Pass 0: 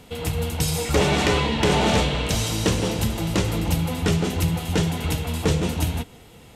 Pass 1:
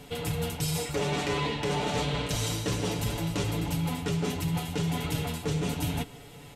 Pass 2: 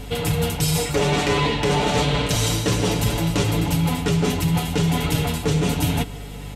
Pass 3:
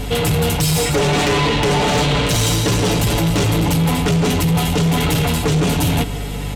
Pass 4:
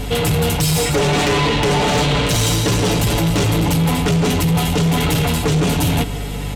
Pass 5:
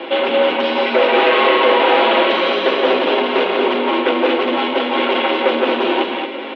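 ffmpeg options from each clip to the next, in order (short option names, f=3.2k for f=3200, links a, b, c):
-af "aecho=1:1:7:0.65,areverse,acompressor=threshold=-25dB:ratio=6,areverse,volume=-1.5dB"
-af "aeval=exprs='val(0)+0.00708*(sin(2*PI*50*n/s)+sin(2*PI*2*50*n/s)/2+sin(2*PI*3*50*n/s)/3+sin(2*PI*4*50*n/s)/4+sin(2*PI*5*50*n/s)/5)':c=same,volume=9dB"
-filter_complex "[0:a]asplit=2[a][b];[b]alimiter=limit=-15.5dB:level=0:latency=1,volume=2dB[c];[a][c]amix=inputs=2:normalize=0,asoftclip=type=tanh:threshold=-15dB,volume=3dB"
-af anull
-filter_complex "[0:a]asplit=2[a][b];[b]aecho=0:1:175|226:0.447|0.531[c];[a][c]amix=inputs=2:normalize=0,highpass=f=240:t=q:w=0.5412,highpass=f=240:t=q:w=1.307,lowpass=f=3.2k:t=q:w=0.5176,lowpass=f=3.2k:t=q:w=0.7071,lowpass=f=3.2k:t=q:w=1.932,afreqshift=82,volume=3.5dB"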